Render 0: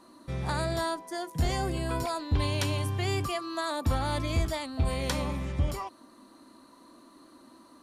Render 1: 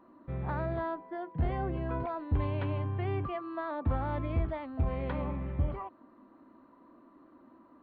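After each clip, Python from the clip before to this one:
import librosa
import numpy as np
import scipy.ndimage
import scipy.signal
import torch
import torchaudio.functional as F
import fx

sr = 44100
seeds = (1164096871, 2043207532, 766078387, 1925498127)

y = scipy.ndimage.gaussian_filter1d(x, 4.1, mode='constant')
y = y * librosa.db_to_amplitude(-2.5)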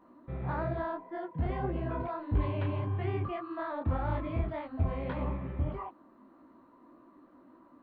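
y = fx.detune_double(x, sr, cents=59)
y = y * librosa.db_to_amplitude(3.5)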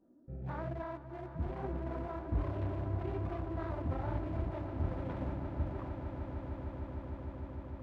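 y = fx.wiener(x, sr, points=41)
y = fx.echo_swell(y, sr, ms=152, loudest=8, wet_db=-13.0)
y = y * librosa.db_to_amplitude(-5.5)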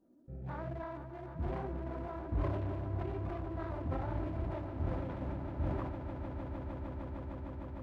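y = fx.sustainer(x, sr, db_per_s=27.0)
y = y * librosa.db_to_amplitude(-2.0)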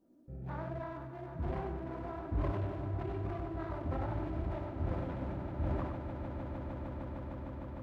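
y = x + 10.0 ** (-6.5 / 20.0) * np.pad(x, (int(98 * sr / 1000.0), 0))[:len(x)]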